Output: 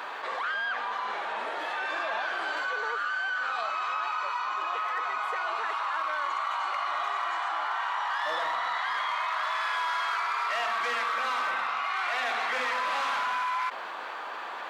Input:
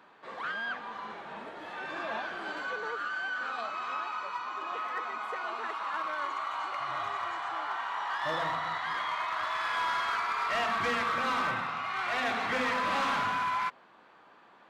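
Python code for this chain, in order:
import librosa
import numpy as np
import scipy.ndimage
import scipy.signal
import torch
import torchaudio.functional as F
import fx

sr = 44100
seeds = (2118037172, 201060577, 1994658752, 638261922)

y = scipy.signal.sosfilt(scipy.signal.butter(2, 580.0, 'highpass', fs=sr, output='sos'), x)
y = fx.env_flatten(y, sr, amount_pct=70)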